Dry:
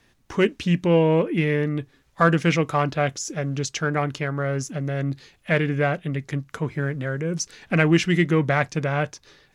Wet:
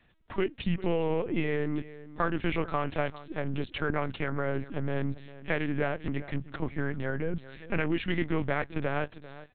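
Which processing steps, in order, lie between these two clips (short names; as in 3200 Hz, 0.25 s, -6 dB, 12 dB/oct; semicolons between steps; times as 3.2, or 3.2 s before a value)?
compressor 10:1, threshold -20 dBFS, peak gain reduction 8.5 dB; outdoor echo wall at 68 m, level -16 dB; LPC vocoder at 8 kHz pitch kept; gain -4 dB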